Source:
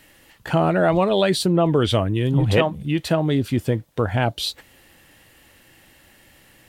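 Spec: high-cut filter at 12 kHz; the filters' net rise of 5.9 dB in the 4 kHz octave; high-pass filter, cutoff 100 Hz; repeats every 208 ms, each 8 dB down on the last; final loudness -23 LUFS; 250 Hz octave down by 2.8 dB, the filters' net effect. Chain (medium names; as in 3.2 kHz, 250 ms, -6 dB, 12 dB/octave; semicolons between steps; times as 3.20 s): high-pass 100 Hz; low-pass 12 kHz; peaking EQ 250 Hz -4 dB; peaking EQ 4 kHz +7 dB; feedback delay 208 ms, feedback 40%, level -8 dB; trim -2.5 dB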